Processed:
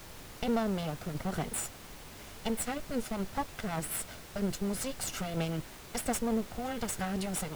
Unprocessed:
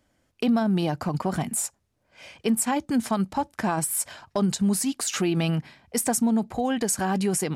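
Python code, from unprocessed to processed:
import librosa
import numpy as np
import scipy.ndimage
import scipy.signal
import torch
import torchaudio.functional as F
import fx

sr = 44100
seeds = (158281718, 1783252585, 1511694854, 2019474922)

y = fx.lower_of_two(x, sr, delay_ms=1.4)
y = fx.rotary_switch(y, sr, hz=1.2, then_hz=5.5, switch_at_s=1.81)
y = fx.dmg_noise_colour(y, sr, seeds[0], colour='pink', level_db=-43.0)
y = F.gain(torch.from_numpy(y), -5.0).numpy()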